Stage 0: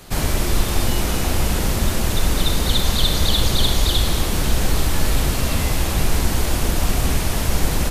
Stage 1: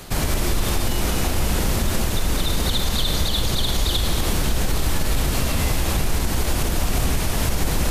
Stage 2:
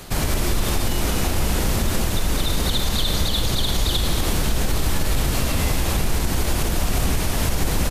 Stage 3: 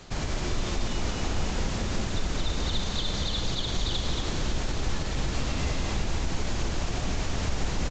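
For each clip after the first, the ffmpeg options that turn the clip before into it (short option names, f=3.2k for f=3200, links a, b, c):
-af "areverse,acompressor=mode=upward:threshold=-16dB:ratio=2.5,areverse,alimiter=limit=-12dB:level=0:latency=1:release=72,volume=1dB"
-filter_complex "[0:a]asplit=7[a][b][c][d][e][f][g];[b]adelay=83,afreqshift=87,volume=-21dB[h];[c]adelay=166,afreqshift=174,volume=-24.7dB[i];[d]adelay=249,afreqshift=261,volume=-28.5dB[j];[e]adelay=332,afreqshift=348,volume=-32.2dB[k];[f]adelay=415,afreqshift=435,volume=-36dB[l];[g]adelay=498,afreqshift=522,volume=-39.7dB[m];[a][h][i][j][k][l][m]amix=inputs=7:normalize=0"
-af "aecho=1:1:227:0.562,volume=-8.5dB" -ar 16000 -c:a pcm_alaw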